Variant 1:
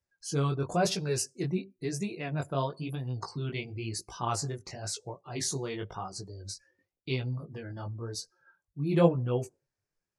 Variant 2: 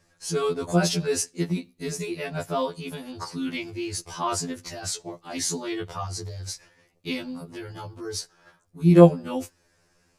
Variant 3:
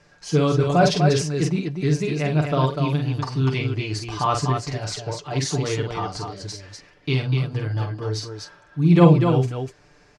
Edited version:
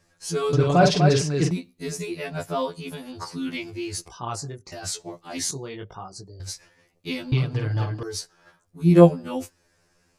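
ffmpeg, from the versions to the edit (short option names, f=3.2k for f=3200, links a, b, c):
-filter_complex "[2:a]asplit=2[a][b];[0:a]asplit=2[c][d];[1:a]asplit=5[e][f][g][h][i];[e]atrim=end=0.532[j];[a]atrim=start=0.528:end=1.512[k];[f]atrim=start=1.508:end=4.082[l];[c]atrim=start=4.078:end=4.722[m];[g]atrim=start=4.718:end=5.512[n];[d]atrim=start=5.508:end=6.402[o];[h]atrim=start=6.398:end=7.322[p];[b]atrim=start=7.318:end=8.032[q];[i]atrim=start=8.028[r];[j][k]acrossfade=d=0.004:c1=hsin:c2=hsin[s];[s][l]acrossfade=d=0.004:c1=hsin:c2=hsin[t];[t][m]acrossfade=d=0.004:c1=hsin:c2=hsin[u];[u][n]acrossfade=d=0.004:c1=hsin:c2=hsin[v];[v][o]acrossfade=d=0.004:c1=hsin:c2=hsin[w];[w][p]acrossfade=d=0.004:c1=hsin:c2=hsin[x];[x][q]acrossfade=d=0.004:c1=hsin:c2=hsin[y];[y][r]acrossfade=d=0.004:c1=hsin:c2=hsin"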